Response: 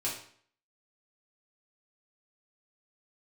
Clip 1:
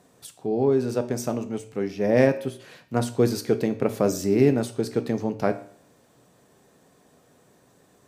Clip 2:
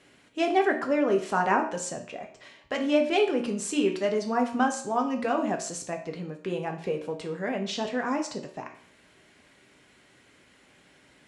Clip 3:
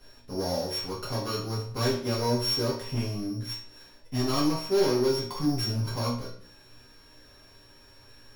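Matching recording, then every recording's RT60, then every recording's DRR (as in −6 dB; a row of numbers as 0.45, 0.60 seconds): 3; 0.55, 0.55, 0.55 seconds; 8.0, 2.5, −7.0 decibels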